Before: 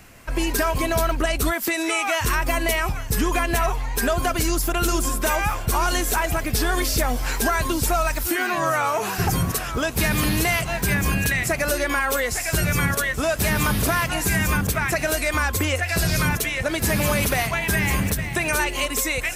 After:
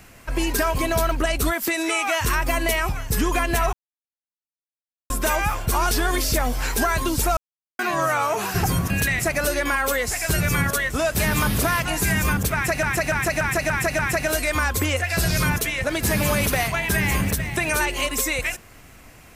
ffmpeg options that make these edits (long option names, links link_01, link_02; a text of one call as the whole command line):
ffmpeg -i in.wav -filter_complex "[0:a]asplit=12[link_01][link_02][link_03][link_04][link_05][link_06][link_07][link_08][link_09][link_10][link_11][link_12];[link_01]atrim=end=3.73,asetpts=PTS-STARTPTS,afade=type=out:start_time=3.726:duration=0.004:curve=hsin[link_13];[link_02]atrim=start=3.73:end=5.1,asetpts=PTS-STARTPTS,volume=0[link_14];[link_03]atrim=start=5.1:end=5.912,asetpts=PTS-STARTPTS,afade=type=in:duration=0.004:curve=hsin[link_15];[link_04]atrim=start=6.548:end=8.01,asetpts=PTS-STARTPTS,afade=type=out:start_time=1.458:duration=0.004:curve=hsin[link_16];[link_05]atrim=start=8.01:end=8.43,asetpts=PTS-STARTPTS,volume=0[link_17];[link_06]atrim=start=8.43:end=9.542,asetpts=PTS-STARTPTS,afade=type=in:duration=0.004:curve=hsin[link_18];[link_07]atrim=start=11.138:end=15.072[link_19];[link_08]atrim=start=14.778:end=15.072[link_20];[link_09]atrim=start=14.778:end=15.072[link_21];[link_10]atrim=start=14.778:end=15.072[link_22];[link_11]atrim=start=14.778:end=15.072[link_23];[link_12]atrim=start=14.778[link_24];[link_13][link_14][link_15]concat=n=3:v=0:a=1[link_25];[link_16][link_17][link_18]concat=n=3:v=0:a=1[link_26];[link_25][link_26]acrossfade=duration=0.004:curve1=hsin:curve2=hsin[link_27];[link_27][link_19]acrossfade=duration=0.004:curve1=hsin:curve2=hsin[link_28];[link_28][link_20]acrossfade=duration=0.004:curve1=hsin:curve2=hsin[link_29];[link_29][link_21]acrossfade=duration=0.004:curve1=hsin:curve2=hsin[link_30];[link_30][link_22]acrossfade=duration=0.004:curve1=hsin:curve2=hsin[link_31];[link_31][link_23]acrossfade=duration=0.004:curve1=hsin:curve2=hsin[link_32];[link_32][link_24]acrossfade=duration=0.004:curve1=hsin:curve2=hsin" out.wav